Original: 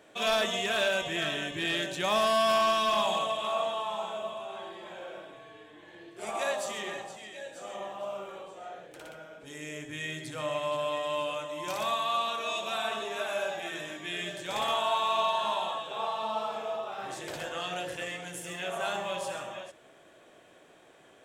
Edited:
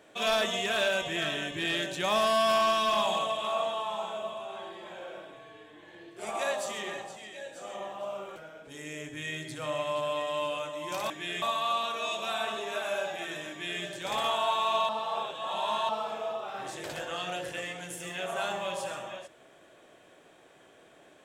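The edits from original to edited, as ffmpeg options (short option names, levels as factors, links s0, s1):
-filter_complex "[0:a]asplit=6[s0][s1][s2][s3][s4][s5];[s0]atrim=end=8.362[s6];[s1]atrim=start=9.118:end=11.862[s7];[s2]atrim=start=13.938:end=14.262[s8];[s3]atrim=start=11.858:end=15.332[s9];[s4]atrim=start=15.328:end=16.332,asetpts=PTS-STARTPTS,areverse[s10];[s5]atrim=start=16.328[s11];[s6][s7]acrossfade=d=0.004:c1=hsin:c2=hsin[s12];[s12][s8]acrossfade=d=0.004:c1=hsin:c2=hsin[s13];[s13][s9]acrossfade=d=0.004:c1=hsin:c2=hsin[s14];[s14][s10]acrossfade=d=0.004:c1=hsin:c2=hsin[s15];[s15][s11]acrossfade=d=0.004:c1=hsin:c2=hsin"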